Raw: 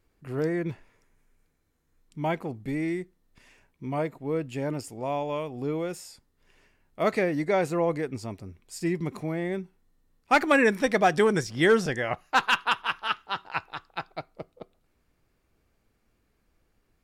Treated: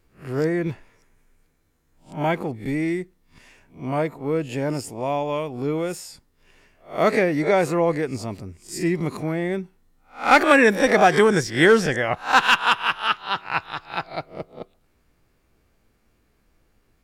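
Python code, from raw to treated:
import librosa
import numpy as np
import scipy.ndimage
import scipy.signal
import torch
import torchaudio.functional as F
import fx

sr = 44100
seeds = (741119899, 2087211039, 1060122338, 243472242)

y = fx.spec_swells(x, sr, rise_s=0.31)
y = y * librosa.db_to_amplitude(5.0)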